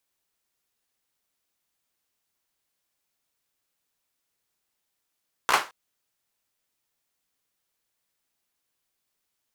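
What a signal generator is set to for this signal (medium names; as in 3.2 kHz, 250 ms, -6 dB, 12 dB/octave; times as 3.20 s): hand clap length 0.22 s, apart 15 ms, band 1.1 kHz, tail 0.28 s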